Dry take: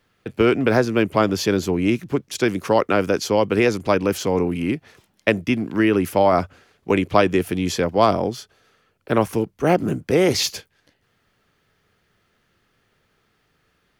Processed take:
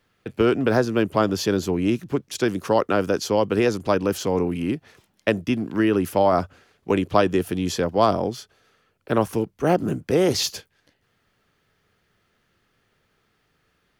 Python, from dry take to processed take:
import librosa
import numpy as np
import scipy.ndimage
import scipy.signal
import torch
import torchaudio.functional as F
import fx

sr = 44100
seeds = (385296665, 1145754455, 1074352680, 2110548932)

y = fx.dynamic_eq(x, sr, hz=2200.0, q=4.0, threshold_db=-43.0, ratio=4.0, max_db=-8)
y = y * 10.0 ** (-2.0 / 20.0)